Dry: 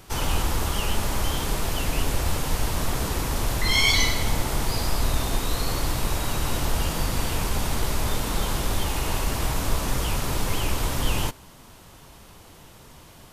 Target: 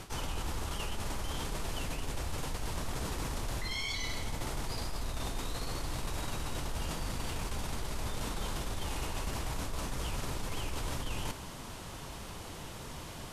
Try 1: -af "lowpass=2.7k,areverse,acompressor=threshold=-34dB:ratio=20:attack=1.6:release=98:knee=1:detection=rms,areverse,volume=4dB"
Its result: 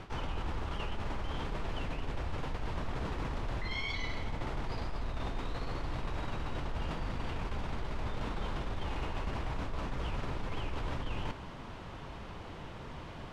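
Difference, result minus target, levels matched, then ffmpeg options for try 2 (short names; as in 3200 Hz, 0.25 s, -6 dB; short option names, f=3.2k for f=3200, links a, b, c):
8000 Hz band -16.0 dB
-af "lowpass=11k,areverse,acompressor=threshold=-34dB:ratio=20:attack=1.6:release=98:knee=1:detection=rms,areverse,volume=4dB"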